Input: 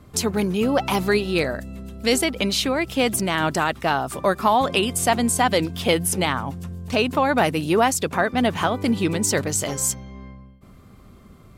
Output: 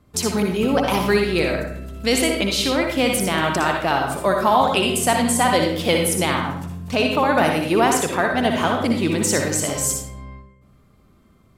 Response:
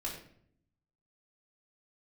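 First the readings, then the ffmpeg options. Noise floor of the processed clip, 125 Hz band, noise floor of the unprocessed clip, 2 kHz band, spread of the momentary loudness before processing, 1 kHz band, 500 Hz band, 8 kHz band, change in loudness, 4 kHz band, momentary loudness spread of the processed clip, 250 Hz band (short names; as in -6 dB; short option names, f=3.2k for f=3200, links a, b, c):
-54 dBFS, +1.0 dB, -47 dBFS, +2.5 dB, 6 LU, +2.0 dB, +2.5 dB, +1.5 dB, +2.0 dB, +2.0 dB, 6 LU, +2.0 dB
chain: -filter_complex "[0:a]agate=range=-9dB:threshold=-41dB:ratio=16:detection=peak,asplit=2[a][b];[b]lowshelf=f=220:g=-7[c];[1:a]atrim=start_sample=2205,asetrate=39690,aresample=44100,adelay=59[d];[c][d]afir=irnorm=-1:irlink=0,volume=-3.5dB[e];[a][e]amix=inputs=2:normalize=0"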